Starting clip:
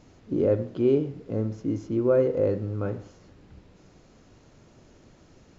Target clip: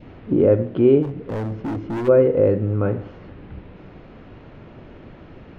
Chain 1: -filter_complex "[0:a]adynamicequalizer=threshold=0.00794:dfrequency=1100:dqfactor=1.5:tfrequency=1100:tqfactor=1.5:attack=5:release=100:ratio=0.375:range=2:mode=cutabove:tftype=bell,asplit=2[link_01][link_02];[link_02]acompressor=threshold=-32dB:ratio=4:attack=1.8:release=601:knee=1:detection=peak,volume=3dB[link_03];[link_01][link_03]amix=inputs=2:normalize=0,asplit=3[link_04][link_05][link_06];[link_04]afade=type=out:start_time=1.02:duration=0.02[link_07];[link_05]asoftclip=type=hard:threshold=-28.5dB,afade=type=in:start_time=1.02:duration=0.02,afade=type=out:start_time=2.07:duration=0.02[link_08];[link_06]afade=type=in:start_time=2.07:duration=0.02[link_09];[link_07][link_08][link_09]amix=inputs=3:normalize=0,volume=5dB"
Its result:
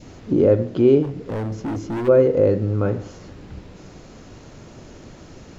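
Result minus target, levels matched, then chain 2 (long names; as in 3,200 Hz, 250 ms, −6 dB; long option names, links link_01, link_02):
4,000 Hz band +4.0 dB
-filter_complex "[0:a]adynamicequalizer=threshold=0.00794:dfrequency=1100:dqfactor=1.5:tfrequency=1100:tqfactor=1.5:attack=5:release=100:ratio=0.375:range=2:mode=cutabove:tftype=bell,lowpass=frequency=3000:width=0.5412,lowpass=frequency=3000:width=1.3066,asplit=2[link_01][link_02];[link_02]acompressor=threshold=-32dB:ratio=4:attack=1.8:release=601:knee=1:detection=peak,volume=3dB[link_03];[link_01][link_03]amix=inputs=2:normalize=0,asplit=3[link_04][link_05][link_06];[link_04]afade=type=out:start_time=1.02:duration=0.02[link_07];[link_05]asoftclip=type=hard:threshold=-28.5dB,afade=type=in:start_time=1.02:duration=0.02,afade=type=out:start_time=2.07:duration=0.02[link_08];[link_06]afade=type=in:start_time=2.07:duration=0.02[link_09];[link_07][link_08][link_09]amix=inputs=3:normalize=0,volume=5dB"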